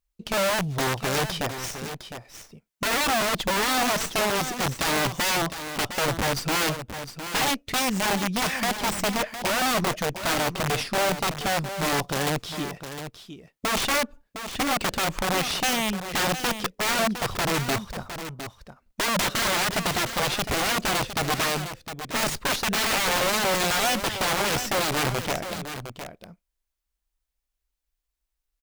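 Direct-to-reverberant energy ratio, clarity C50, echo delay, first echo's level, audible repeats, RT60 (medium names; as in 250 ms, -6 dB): no reverb, no reverb, 709 ms, -10.0 dB, 1, no reverb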